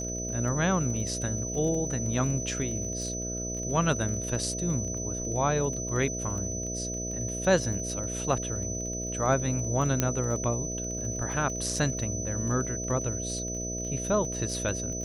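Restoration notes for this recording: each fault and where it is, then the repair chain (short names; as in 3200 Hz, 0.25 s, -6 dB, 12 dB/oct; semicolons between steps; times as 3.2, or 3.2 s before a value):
buzz 60 Hz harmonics 11 -36 dBFS
crackle 24/s -35 dBFS
tone 6000 Hz -34 dBFS
10 pop -9 dBFS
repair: de-click; de-hum 60 Hz, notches 11; notch 6000 Hz, Q 30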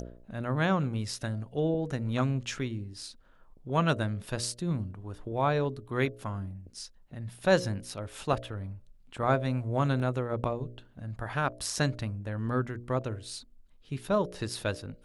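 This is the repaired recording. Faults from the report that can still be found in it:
10 pop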